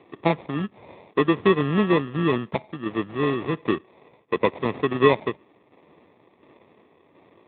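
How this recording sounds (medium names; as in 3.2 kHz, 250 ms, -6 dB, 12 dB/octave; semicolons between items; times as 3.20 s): tremolo saw down 1.4 Hz, depth 50%; aliases and images of a low sample rate 1.5 kHz, jitter 0%; Speex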